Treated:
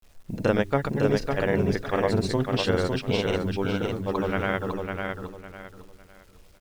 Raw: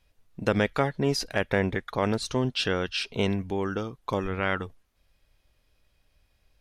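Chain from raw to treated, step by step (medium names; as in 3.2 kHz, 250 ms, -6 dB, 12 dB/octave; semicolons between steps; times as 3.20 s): tilt EQ -2 dB/octave; hum notches 50/100/150/200/250/300/350/400 Hz; granulator; in parallel at +1 dB: compression 8:1, threshold -41 dBFS, peak gain reduction 23 dB; on the sum: bit crusher 10-bit; tone controls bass -3 dB, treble +3 dB; on a send: feedback delay 554 ms, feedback 28%, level -4.5 dB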